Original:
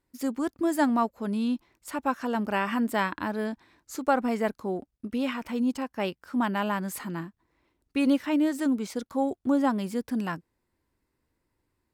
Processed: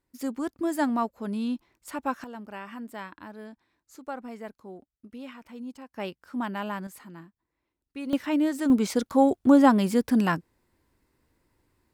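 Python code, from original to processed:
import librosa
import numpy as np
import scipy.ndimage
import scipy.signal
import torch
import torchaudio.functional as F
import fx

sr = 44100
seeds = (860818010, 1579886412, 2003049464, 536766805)

y = fx.gain(x, sr, db=fx.steps((0.0, -2.0), (2.24, -12.5), (5.93, -4.5), (6.87, -11.0), (8.13, 0.0), (8.7, 7.0)))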